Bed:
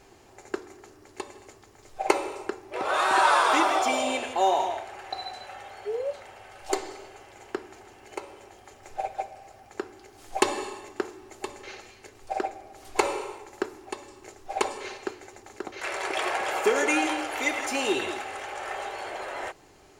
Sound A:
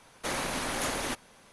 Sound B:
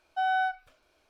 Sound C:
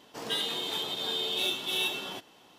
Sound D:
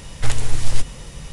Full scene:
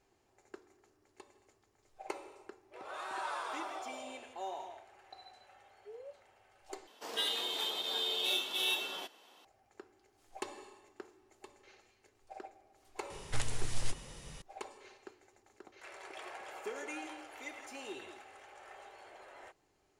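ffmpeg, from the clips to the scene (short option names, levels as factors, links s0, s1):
-filter_complex "[0:a]volume=0.112[s0];[3:a]highpass=390[s1];[4:a]lowshelf=f=160:g=-7[s2];[s0]asplit=2[s3][s4];[s3]atrim=end=6.874[s5];[s1]atrim=end=2.58,asetpts=PTS-STARTPTS,volume=0.708[s6];[s4]atrim=start=9.446[s7];[s2]atrim=end=1.32,asetpts=PTS-STARTPTS,volume=0.299,afade=t=in:d=0.004:c=hsin,afade=t=out:st=1.316:d=0.004:c=hsin,adelay=13100[s8];[s5][s6]acrossfade=d=0.004:c1=hsin:c2=hsin[s9];[s9][s7]acrossfade=d=0.004:c1=hsin:c2=hsin[s10];[s10][s8]amix=inputs=2:normalize=0"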